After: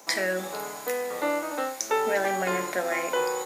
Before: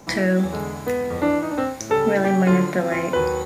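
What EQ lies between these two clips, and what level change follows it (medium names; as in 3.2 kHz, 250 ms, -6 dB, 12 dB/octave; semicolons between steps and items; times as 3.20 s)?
high-pass 500 Hz 12 dB/octave; treble shelf 5.5 kHz +9.5 dB; -3.0 dB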